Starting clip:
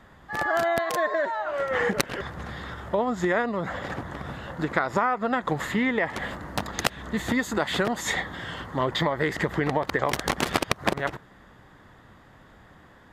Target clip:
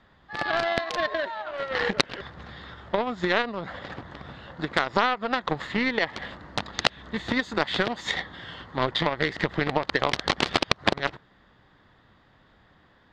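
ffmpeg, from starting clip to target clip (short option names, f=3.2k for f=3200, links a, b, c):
-af "aeval=exprs='0.501*(cos(1*acos(clip(val(0)/0.501,-1,1)))-cos(1*PI/2))+0.1*(cos(5*acos(clip(val(0)/0.501,-1,1)))-cos(5*PI/2))+0.112*(cos(7*acos(clip(val(0)/0.501,-1,1)))-cos(7*PI/2))':c=same,lowpass=f=4.2k:t=q:w=2"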